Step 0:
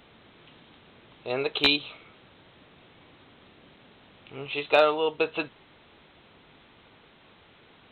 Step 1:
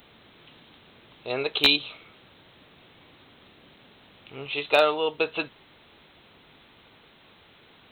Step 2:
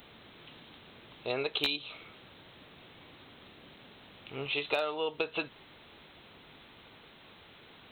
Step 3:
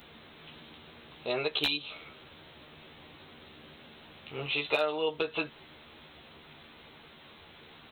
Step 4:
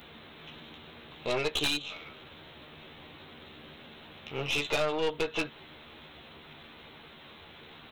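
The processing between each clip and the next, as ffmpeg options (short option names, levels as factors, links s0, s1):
-af "aemphasis=mode=production:type=50fm"
-af "acompressor=threshold=0.0355:ratio=5"
-filter_complex "[0:a]asplit=2[s0][s1];[s1]adelay=13,volume=0.75[s2];[s0][s2]amix=inputs=2:normalize=0"
-af "aeval=exprs='(tanh(28.2*val(0)+0.6)-tanh(0.6))/28.2':c=same,volume=1.88"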